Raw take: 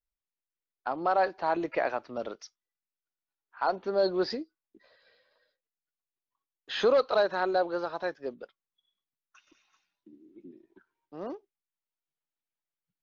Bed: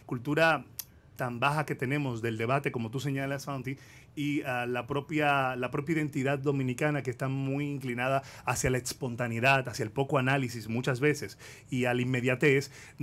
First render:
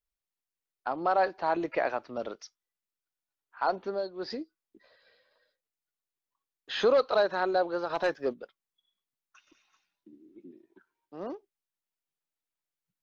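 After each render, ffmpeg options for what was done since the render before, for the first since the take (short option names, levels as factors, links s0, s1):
-filter_complex "[0:a]asplit=3[s0][s1][s2];[s0]afade=t=out:st=7.89:d=0.02[s3];[s1]aeval=exprs='0.0891*sin(PI/2*1.41*val(0)/0.0891)':c=same,afade=t=in:st=7.89:d=0.02,afade=t=out:st=8.32:d=0.02[s4];[s2]afade=t=in:st=8.32:d=0.02[s5];[s3][s4][s5]amix=inputs=3:normalize=0,asettb=1/sr,asplit=3[s6][s7][s8];[s6]atrim=end=10.394[s9];[s7]atrim=start=10.39:end=11.2,asetpts=PTS-STARTPTS,afade=t=in:d=0.004:c=qsin,afade=t=out:st=0.806:d=0.004:c=qsin,lowshelf=f=87:g=-9.5[s10];[s8]atrim=start=11.196[s11];[s9][s10]acrossfade=d=0.004:c1=hsin:c2=qsin[s12];[s12][s11]acrossfade=d=0.004:c1=qsin:c2=hsin,asplit=3[s13][s14][s15];[s13]atrim=end=4.09,asetpts=PTS-STARTPTS,afade=t=out:st=3.82:d=0.27:silence=0.177828[s16];[s14]atrim=start=4.09:end=4.15,asetpts=PTS-STARTPTS,volume=0.178[s17];[s15]atrim=start=4.15,asetpts=PTS-STARTPTS,afade=t=in:d=0.27:silence=0.177828[s18];[s16][s17][s18]concat=n=3:v=0:a=1"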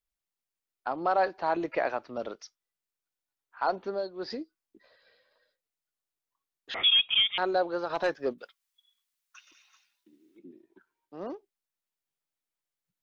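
-filter_complex "[0:a]asettb=1/sr,asplit=3[s0][s1][s2];[s0]atrim=end=6.744[s3];[s1]atrim=start=6.74:end=7.38,asetpts=PTS-STARTPTS,afade=t=in:d=0.004:c=qsin,afade=t=out:st=0.636:d=0.004:c=qsin,lowpass=f=3200:t=q:w=0.5098,lowpass=f=3200:t=q:w=0.6013,lowpass=f=3200:t=q:w=0.9,lowpass=f=3200:t=q:w=2.563,afreqshift=-3800[s4];[s2]atrim=start=7.376[s5];[s3][s4]acrossfade=d=0.004:c1=hsin:c2=qsin[s6];[s6][s5]acrossfade=d=0.004:c1=qsin:c2=hsin,asettb=1/sr,asplit=3[s7][s8][s9];[s7]atrim=end=8.384[s10];[s8]atrim=start=8.38:end=10.39,asetpts=PTS-STARTPTS,afade=t=in:d=0.004:c=qsin,afade=t=out:st=2.006:d=0.004:c=qsin,tiltshelf=f=830:g=-9.5[s11];[s9]atrim=start=10.386[s12];[s10][s11]acrossfade=d=0.004:c1=hsin:c2=qsin[s13];[s13][s12]acrossfade=d=0.004:c1=qsin:c2=hsin"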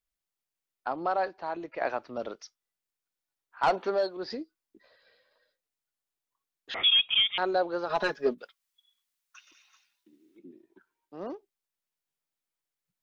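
-filter_complex "[0:a]asettb=1/sr,asplit=3[s0][s1][s2];[s0]atrim=end=3.634[s3];[s1]atrim=start=3.63:end=4.17,asetpts=PTS-STARTPTS,afade=t=in:d=0.004:c=qsin,afade=t=out:st=0.536:d=0.004:c=qsin,asplit=2[s4][s5];[s5]highpass=f=720:p=1,volume=6.31,asoftclip=type=tanh:threshold=0.178[s6];[s4][s6]amix=inputs=2:normalize=0,lowpass=f=4300:p=1,volume=0.501[s7];[s2]atrim=start=4.166[s8];[s3][s7]acrossfade=d=0.004:c1=hsin:c2=qsin[s9];[s9][s8]acrossfade=d=0.004:c1=qsin:c2=hsin,asettb=1/sr,asplit=3[s10][s11][s12];[s10]atrim=end=7.884[s13];[s11]atrim=start=7.88:end=8.35,asetpts=PTS-STARTPTS,afade=t=in:d=0.004:c=qsin,afade=t=out:st=0.466:d=0.004:c=qsin,aecho=1:1:4.8:0.96,atrim=end_sample=20727[s14];[s12]atrim=start=8.346[s15];[s13][s14]acrossfade=d=0.004:c1=hsin:c2=qsin[s16];[s16][s15]acrossfade=d=0.004:c1=qsin:c2=hsin,asplit=2[s17][s18];[s17]atrim=end=1.81,asetpts=PTS-STARTPTS,afade=t=out:st=0.92:d=0.89:c=qua:silence=0.398107[s19];[s18]atrim=start=1.81,asetpts=PTS-STARTPTS,afade=t=in:d=0.004:c=hsin:silence=0.398107[s20];[s19][s20]concat=n=2:v=0:a=1"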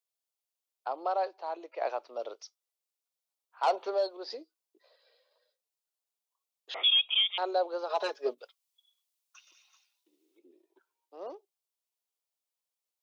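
-af "highpass=f=440:w=0.5412,highpass=f=440:w=1.3066,equalizer=f=1700:w=1.6:g=-11"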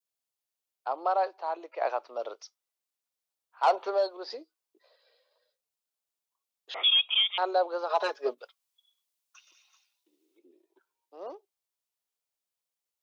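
-af "adynamicequalizer=threshold=0.00631:dfrequency=1200:dqfactor=0.77:tfrequency=1200:tqfactor=0.77:attack=5:release=100:ratio=0.375:range=3:mode=boostabove:tftype=bell"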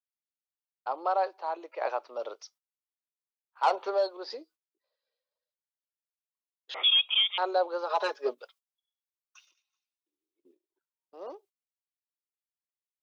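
-af "bandreject=f=690:w=12,agate=range=0.1:threshold=0.001:ratio=16:detection=peak"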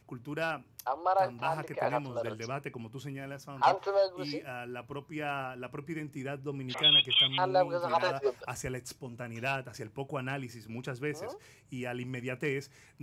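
-filter_complex "[1:a]volume=0.355[s0];[0:a][s0]amix=inputs=2:normalize=0"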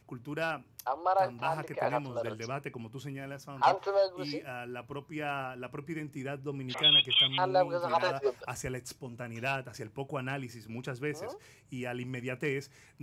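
-af anull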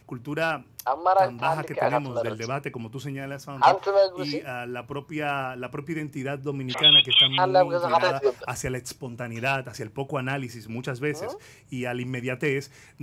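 -af "volume=2.37"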